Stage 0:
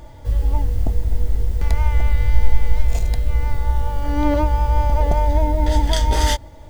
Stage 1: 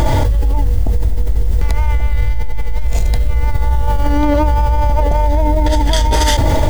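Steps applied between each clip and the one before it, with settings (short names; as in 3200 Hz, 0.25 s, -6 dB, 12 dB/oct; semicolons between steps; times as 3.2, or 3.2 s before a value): limiter -12.5 dBFS, peak gain reduction 10.5 dB; fast leveller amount 100%; gain +2 dB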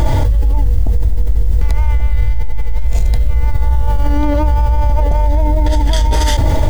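low shelf 150 Hz +5.5 dB; gain -3.5 dB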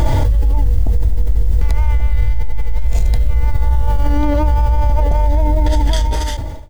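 ending faded out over 0.83 s; gain -1 dB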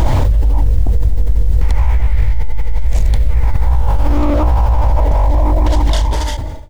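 Doppler distortion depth 0.6 ms; gain +1.5 dB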